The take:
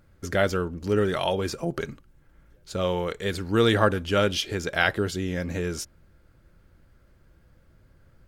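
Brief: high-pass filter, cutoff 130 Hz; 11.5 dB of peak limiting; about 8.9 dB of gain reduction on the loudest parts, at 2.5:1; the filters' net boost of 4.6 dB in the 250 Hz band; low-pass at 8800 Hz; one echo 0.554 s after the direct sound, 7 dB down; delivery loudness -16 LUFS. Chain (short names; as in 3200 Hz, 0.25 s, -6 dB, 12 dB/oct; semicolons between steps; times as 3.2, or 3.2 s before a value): HPF 130 Hz; LPF 8800 Hz; bell 250 Hz +7 dB; compressor 2.5:1, threshold -26 dBFS; limiter -22 dBFS; echo 0.554 s -7 dB; gain +17 dB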